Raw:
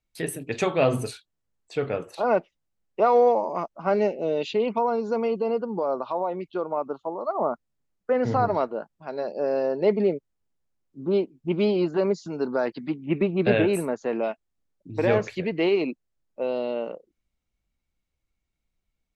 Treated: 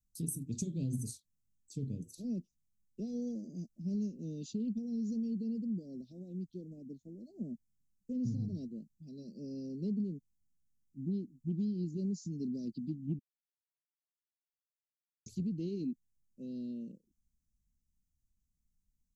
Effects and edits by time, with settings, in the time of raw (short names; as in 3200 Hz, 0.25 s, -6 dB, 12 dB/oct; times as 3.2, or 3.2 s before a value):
13.19–15.26 mute
whole clip: elliptic band-stop 230–6100 Hz, stop band 80 dB; compressor, threshold -32 dBFS